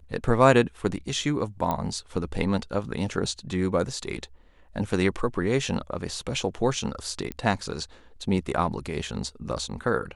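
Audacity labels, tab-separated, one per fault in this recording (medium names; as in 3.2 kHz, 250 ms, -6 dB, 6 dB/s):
1.710000	1.710000	pop -14 dBFS
7.320000	7.320000	pop -17 dBFS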